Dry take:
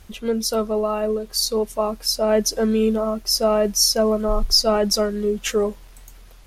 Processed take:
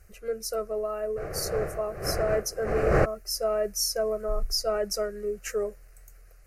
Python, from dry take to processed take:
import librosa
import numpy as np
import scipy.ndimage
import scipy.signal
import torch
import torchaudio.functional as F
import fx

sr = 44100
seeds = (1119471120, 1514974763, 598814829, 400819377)

y = fx.dmg_wind(x, sr, seeds[0], corner_hz=630.0, level_db=-16.0, at=(1.16, 3.04), fade=0.02)
y = fx.fixed_phaser(y, sr, hz=930.0, stages=6)
y = F.gain(torch.from_numpy(y), -6.5).numpy()